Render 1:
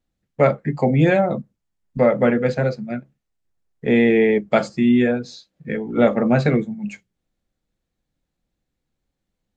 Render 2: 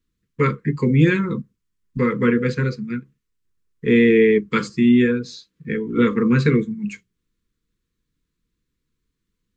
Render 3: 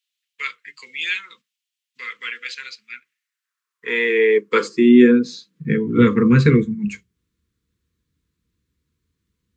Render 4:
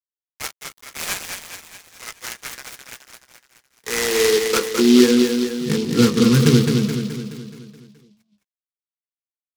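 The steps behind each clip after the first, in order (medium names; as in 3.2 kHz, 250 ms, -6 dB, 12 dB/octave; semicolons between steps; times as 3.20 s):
elliptic band-stop 470–1000 Hz, stop band 40 dB; trim +2 dB
high-pass sweep 2.9 kHz -> 70 Hz, 2.81–6.39 s; trim +2 dB
crossover distortion -40 dBFS; on a send: feedback delay 212 ms, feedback 54%, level -5.5 dB; on the sum: delay time shaken by noise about 3.8 kHz, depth 0.097 ms; trim -1.5 dB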